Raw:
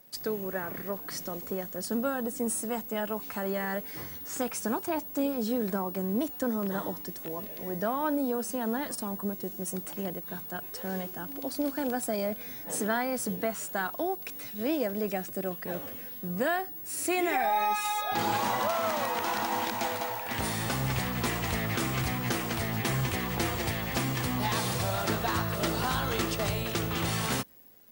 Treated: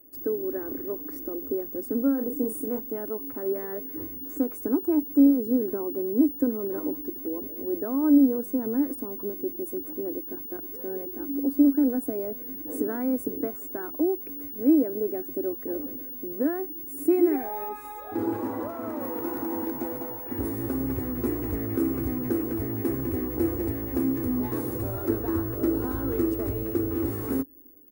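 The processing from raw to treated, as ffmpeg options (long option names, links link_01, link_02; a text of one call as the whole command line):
ffmpeg -i in.wav -filter_complex "[0:a]asettb=1/sr,asplit=3[link_01][link_02][link_03];[link_01]atrim=end=2.144[link_04];[link_02]atrim=start=2.14:end=2.79,asetpts=PTS-STARTPTS,afade=type=in:duration=0.004:curve=qsin,afade=type=out:start_time=0.646:duration=0.004:curve=qsin,asplit=2[link_05][link_06];[link_06]adelay=37,volume=-6.5dB[link_07];[link_05][link_07]amix=inputs=2:normalize=0,atrim=end_sample=28665[link_08];[link_03]atrim=start=2.786[link_09];[link_04][link_08]acrossfade=duration=0.004:curve1=hsin:curve2=qsin[link_10];[link_10][link_09]acrossfade=duration=0.004:curve1=qsin:curve2=hsin,asettb=1/sr,asplit=3[link_11][link_12][link_13];[link_11]atrim=end=17.694[link_14];[link_12]atrim=start=17.69:end=19.01,asetpts=PTS-STARTPTS,afade=type=in:duration=0.004:curve=qsin,afade=type=out:start_time=1.316:duration=0.004:curve=qsin,highshelf=frequency=8300:gain=-9.5[link_15];[link_13]atrim=start=19.006[link_16];[link_14][link_15]acrossfade=duration=0.004:curve1=hsin:curve2=qsin[link_17];[link_17][link_16]acrossfade=duration=0.004:curve1=qsin:curve2=hsin,firequalizer=gain_entry='entry(100,0);entry(170,-24);entry(270,11);entry(670,-12);entry(1400,-13);entry(3100,-28);entry(5800,-24);entry(14000,0)':delay=0.05:min_phase=1,volume=3.5dB" out.wav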